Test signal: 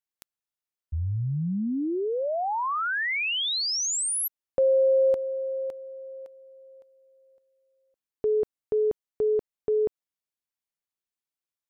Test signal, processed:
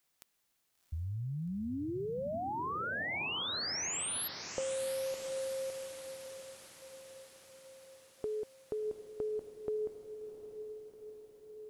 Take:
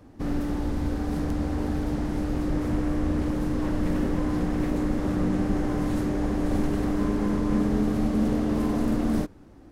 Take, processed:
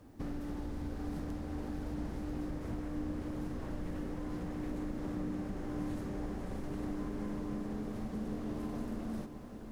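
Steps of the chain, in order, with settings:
downward compressor 6 to 1, threshold −30 dBFS
feedback delay with all-pass diffusion 722 ms, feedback 61%, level −9 dB
background noise white −72 dBFS
level −6 dB

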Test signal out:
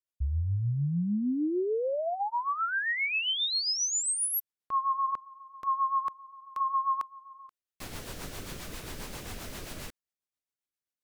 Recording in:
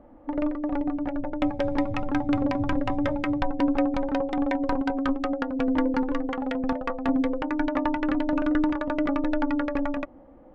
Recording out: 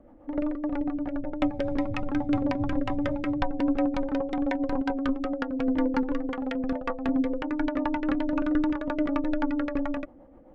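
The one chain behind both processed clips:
rotating-speaker cabinet horn 7.5 Hz

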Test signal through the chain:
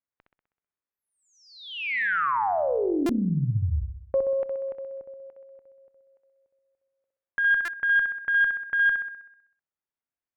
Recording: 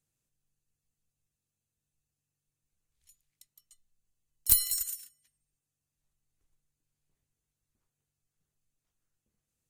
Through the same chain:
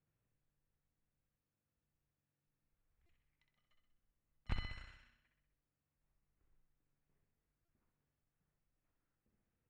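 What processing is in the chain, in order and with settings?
low-pass filter 2,200 Hz 24 dB per octave
on a send: flutter between parallel walls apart 10.9 metres, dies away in 0.75 s
on the sum: harmonic generator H 2 −26 dB, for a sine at −15.5 dBFS
buffer that repeats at 0:03.06/0:07.65, samples 128, times 10

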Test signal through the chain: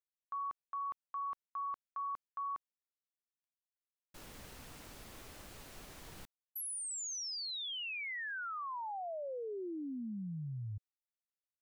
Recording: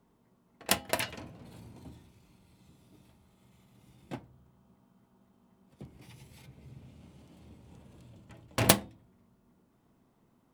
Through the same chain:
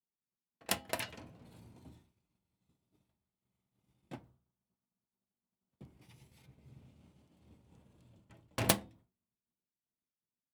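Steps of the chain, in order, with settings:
downward expander −50 dBFS
level −6.5 dB

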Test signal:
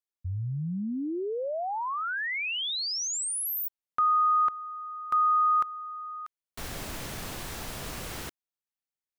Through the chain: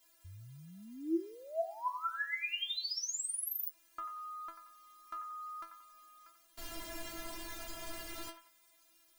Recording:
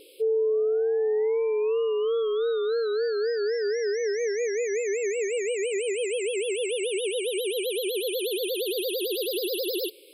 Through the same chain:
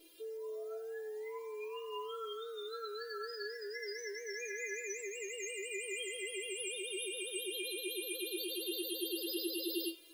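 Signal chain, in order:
bit-depth reduction 10 bits, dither triangular
stiff-string resonator 330 Hz, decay 0.23 s, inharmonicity 0.002
delay with a band-pass on its return 90 ms, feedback 33%, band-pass 1,400 Hz, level −8 dB
level +6 dB

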